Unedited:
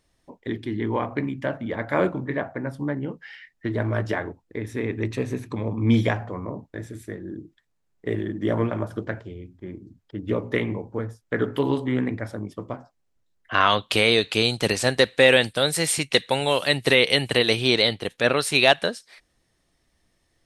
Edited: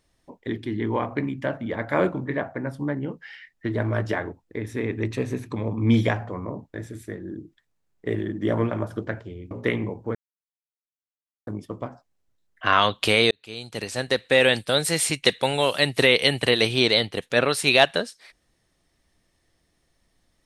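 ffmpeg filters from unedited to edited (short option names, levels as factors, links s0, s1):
-filter_complex "[0:a]asplit=5[s0][s1][s2][s3][s4];[s0]atrim=end=9.512[s5];[s1]atrim=start=10.388:end=11.03,asetpts=PTS-STARTPTS,afade=t=out:st=0.638:d=0.004:c=hsin[s6];[s2]atrim=start=11.03:end=12.35,asetpts=PTS-STARTPTS,volume=0[s7];[s3]atrim=start=12.35:end=14.19,asetpts=PTS-STARTPTS,afade=t=in:d=0.004:c=hsin,afade=t=out:st=1.836:d=0.004:c=hsin[s8];[s4]atrim=start=14.19,asetpts=PTS-STARTPTS,afade=t=in:d=1.4[s9];[s6][s7][s8][s9]concat=n=4:v=0:a=1[s10];[s5][s10]acrossfade=d=0.004:c1=hsin:c2=hsin"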